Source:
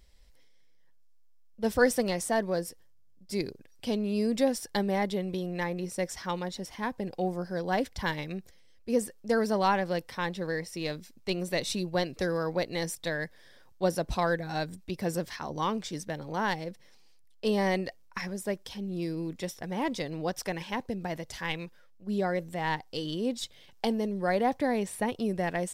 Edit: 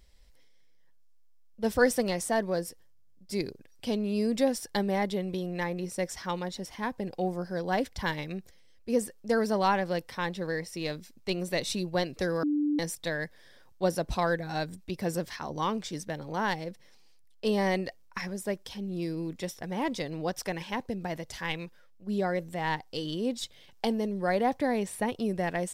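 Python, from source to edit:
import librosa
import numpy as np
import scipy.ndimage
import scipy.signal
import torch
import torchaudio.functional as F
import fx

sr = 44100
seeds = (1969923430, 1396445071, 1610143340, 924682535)

y = fx.edit(x, sr, fx.bleep(start_s=12.43, length_s=0.36, hz=295.0, db=-24.0), tone=tone)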